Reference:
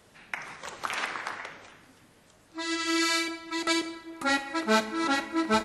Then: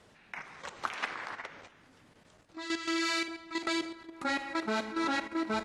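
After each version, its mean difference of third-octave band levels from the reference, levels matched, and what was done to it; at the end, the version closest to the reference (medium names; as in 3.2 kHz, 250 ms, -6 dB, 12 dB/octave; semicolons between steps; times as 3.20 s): 2.5 dB: level held to a coarse grid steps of 10 dB; distance through air 53 m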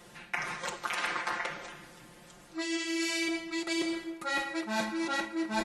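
5.5 dB: comb 5.7 ms, depth 91%; reverse; compression 10:1, threshold -32 dBFS, peak gain reduction 15.5 dB; reverse; trim +3 dB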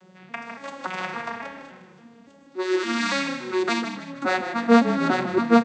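8.0 dB: vocoder on a broken chord major triad, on F#3, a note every 283 ms; frequency-shifting echo 154 ms, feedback 42%, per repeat -32 Hz, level -10 dB; trim +7 dB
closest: first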